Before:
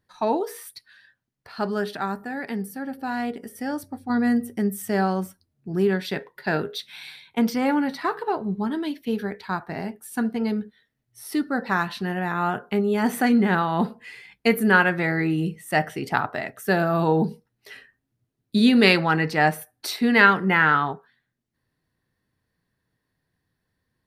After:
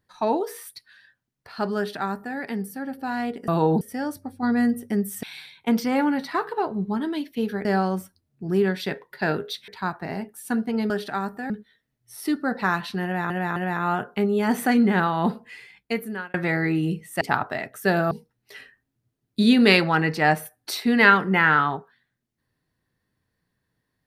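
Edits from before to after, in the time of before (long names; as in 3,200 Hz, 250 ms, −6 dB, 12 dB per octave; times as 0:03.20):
0:01.77–0:02.37: duplicate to 0:10.57
0:04.90–0:06.93: move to 0:09.35
0:12.11–0:12.37: repeat, 3 plays
0:13.99–0:14.89: fade out
0:15.76–0:16.04: remove
0:16.94–0:17.27: move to 0:03.48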